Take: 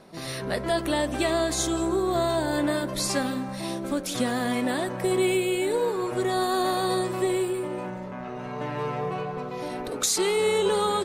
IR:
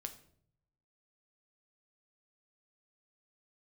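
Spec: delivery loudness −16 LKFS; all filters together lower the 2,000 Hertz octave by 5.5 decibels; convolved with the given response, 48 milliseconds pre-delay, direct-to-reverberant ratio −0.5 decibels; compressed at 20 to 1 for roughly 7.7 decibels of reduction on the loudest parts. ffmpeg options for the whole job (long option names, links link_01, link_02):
-filter_complex "[0:a]equalizer=frequency=2000:width_type=o:gain=-7,acompressor=threshold=-28dB:ratio=20,asplit=2[link_01][link_02];[1:a]atrim=start_sample=2205,adelay=48[link_03];[link_02][link_03]afir=irnorm=-1:irlink=0,volume=3.5dB[link_04];[link_01][link_04]amix=inputs=2:normalize=0,volume=13.5dB"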